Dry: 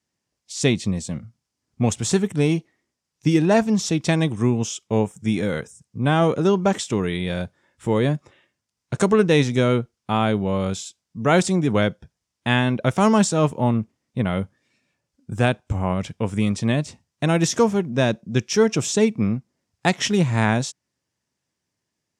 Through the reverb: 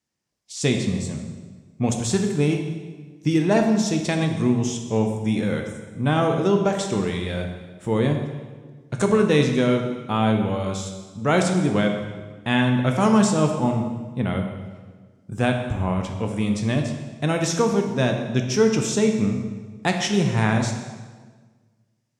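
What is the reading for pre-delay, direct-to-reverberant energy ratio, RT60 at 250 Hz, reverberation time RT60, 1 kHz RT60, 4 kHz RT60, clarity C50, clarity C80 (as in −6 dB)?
6 ms, 3.0 dB, 1.7 s, 1.5 s, 1.4 s, 1.2 s, 5.5 dB, 7.5 dB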